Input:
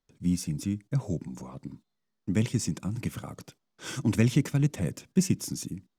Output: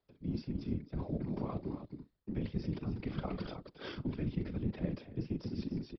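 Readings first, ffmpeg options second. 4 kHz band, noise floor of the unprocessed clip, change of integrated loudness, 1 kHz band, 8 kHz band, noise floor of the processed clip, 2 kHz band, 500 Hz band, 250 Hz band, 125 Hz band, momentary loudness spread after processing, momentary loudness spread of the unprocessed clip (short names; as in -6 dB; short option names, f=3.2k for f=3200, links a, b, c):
-12.0 dB, -80 dBFS, -10.5 dB, -2.5 dB, under -35 dB, -74 dBFS, -12.0 dB, -5.5 dB, -8.5 dB, -10.0 dB, 7 LU, 17 LU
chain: -filter_complex "[0:a]tremolo=f=32:d=0.4,acrossover=split=720|1000[a][b][c];[b]acrusher=bits=2:mode=log:mix=0:aa=0.000001[d];[a][d][c]amix=inputs=3:normalize=0,acrossover=split=230[e][f];[f]acompressor=threshold=-38dB:ratio=2.5[g];[e][g]amix=inputs=2:normalize=0,aecho=1:1:40.82|274.1:0.251|0.282,areverse,acompressor=threshold=-41dB:ratio=5,areverse,equalizer=f=410:w=0.71:g=6.5,afftfilt=real='hypot(re,im)*cos(2*PI*random(0))':imag='hypot(re,im)*sin(2*PI*random(1))':win_size=512:overlap=0.75,aresample=11025,aresample=44100,volume=9.5dB"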